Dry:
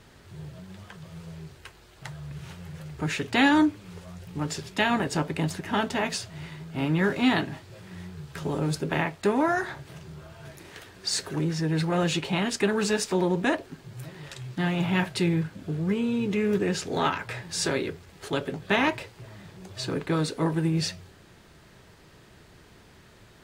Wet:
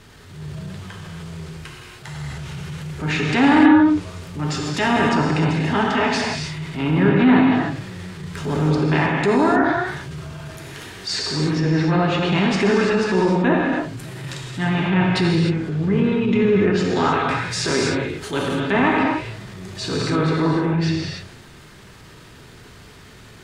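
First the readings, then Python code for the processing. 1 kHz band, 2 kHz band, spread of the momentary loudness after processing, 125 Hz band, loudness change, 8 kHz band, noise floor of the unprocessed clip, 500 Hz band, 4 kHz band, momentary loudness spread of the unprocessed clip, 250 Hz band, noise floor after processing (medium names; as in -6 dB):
+8.5 dB, +7.0 dB, 18 LU, +8.5 dB, +8.0 dB, +1.5 dB, -54 dBFS, +8.0 dB, +5.5 dB, 20 LU, +9.0 dB, -44 dBFS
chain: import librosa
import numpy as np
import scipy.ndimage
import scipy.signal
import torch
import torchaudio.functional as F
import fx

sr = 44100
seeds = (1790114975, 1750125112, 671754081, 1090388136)

y = fx.env_lowpass_down(x, sr, base_hz=1500.0, full_db=-20.0)
y = fx.peak_eq(y, sr, hz=620.0, db=-4.5, octaves=0.9)
y = fx.rev_gated(y, sr, seeds[0], gate_ms=330, shape='flat', drr_db=-1.5)
y = fx.transient(y, sr, attack_db=-6, sustain_db=2)
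y = y * 10.0 ** (7.0 / 20.0)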